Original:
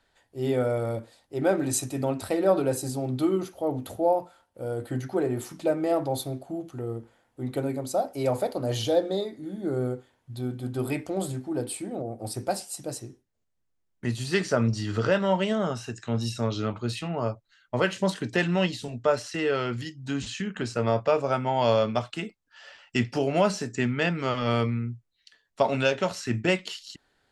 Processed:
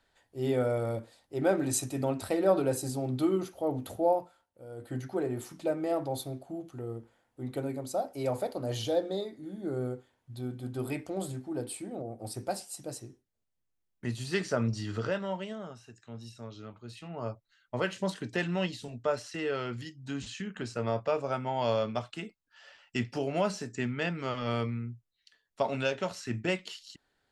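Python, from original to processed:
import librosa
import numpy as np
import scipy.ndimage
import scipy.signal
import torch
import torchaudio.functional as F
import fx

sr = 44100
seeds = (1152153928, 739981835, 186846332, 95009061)

y = fx.gain(x, sr, db=fx.line((4.12, -3.0), (4.67, -15.0), (4.94, -5.5), (14.87, -5.5), (15.77, -16.5), (16.84, -16.5), (17.32, -6.5)))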